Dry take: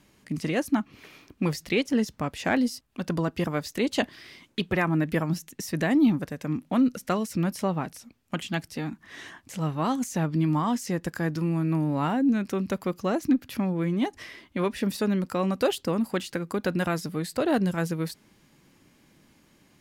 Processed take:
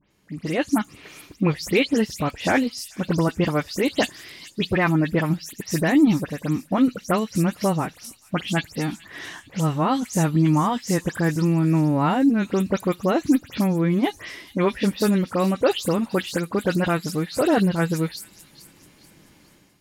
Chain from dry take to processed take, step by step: spectral delay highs late, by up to 0.102 s; AGC gain up to 12 dB; on a send: thin delay 0.433 s, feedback 41%, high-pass 4300 Hz, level -10 dB; on the sum: gain -5 dB

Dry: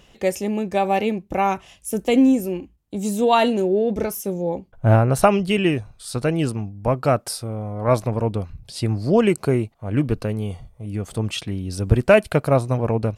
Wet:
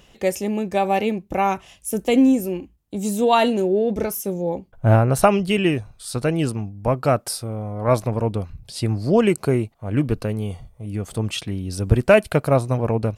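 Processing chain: high shelf 11000 Hz +4.5 dB

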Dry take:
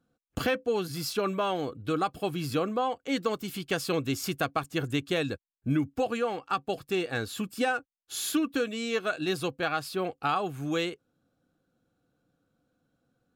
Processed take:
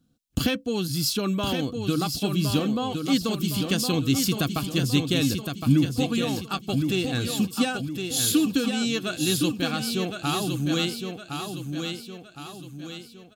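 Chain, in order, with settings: band shelf 940 Hz -12 dB 2.9 oct; feedback echo 1.063 s, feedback 44%, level -6 dB; gain +9 dB

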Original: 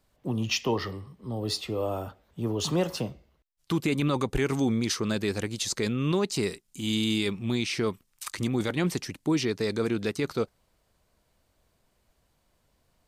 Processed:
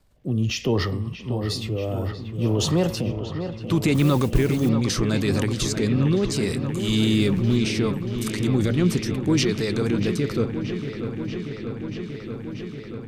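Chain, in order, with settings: 6.99–7.57 zero-crossing step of -38 dBFS; low shelf 150 Hz +9 dB; transient shaper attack -1 dB, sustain +6 dB; rotary speaker horn 0.7 Hz; 3.94–4.69 modulation noise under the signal 24 dB; dark delay 0.635 s, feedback 81%, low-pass 2900 Hz, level -9 dB; gain +4 dB

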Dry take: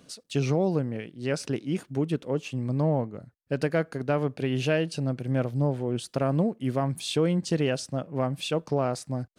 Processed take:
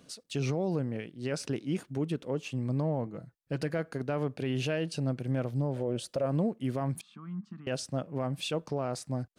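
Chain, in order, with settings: 3.06–3.78 comb 6.1 ms, depth 51%; 5.76–6.26 bell 560 Hz +14 dB 0.35 oct; limiter -19 dBFS, peak gain reduction 11 dB; 7.01–7.67 double band-pass 500 Hz, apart 2.5 oct; gain -2.5 dB

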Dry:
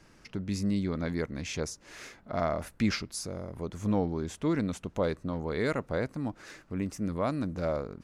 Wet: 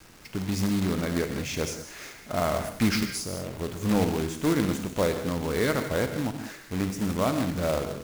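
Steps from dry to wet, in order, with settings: non-linear reverb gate 0.23 s flat, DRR 5.5 dB; companded quantiser 4-bit; gain +3 dB

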